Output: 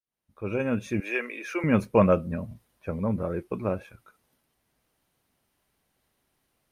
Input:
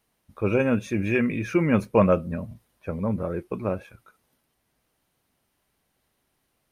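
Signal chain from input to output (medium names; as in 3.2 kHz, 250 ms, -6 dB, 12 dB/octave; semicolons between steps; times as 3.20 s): fade-in on the opening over 1.05 s; 1.00–1.64 s: Bessel high-pass 550 Hz, order 6; trim -1 dB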